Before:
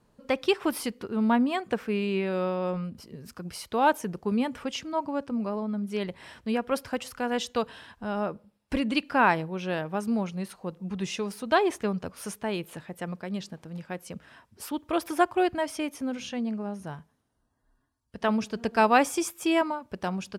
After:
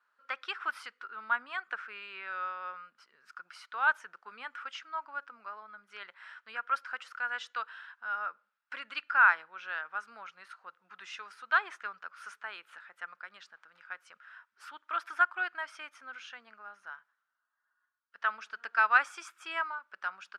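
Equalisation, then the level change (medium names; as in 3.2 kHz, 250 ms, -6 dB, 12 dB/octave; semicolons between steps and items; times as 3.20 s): resonant high-pass 1.4 kHz, resonance Q 6.4; distance through air 59 m; treble shelf 5.6 kHz -7.5 dB; -7.5 dB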